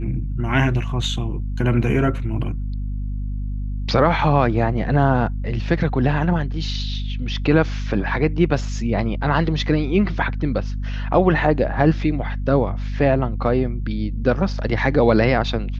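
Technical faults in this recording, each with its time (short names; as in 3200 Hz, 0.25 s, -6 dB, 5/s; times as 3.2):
hum 50 Hz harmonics 5 -25 dBFS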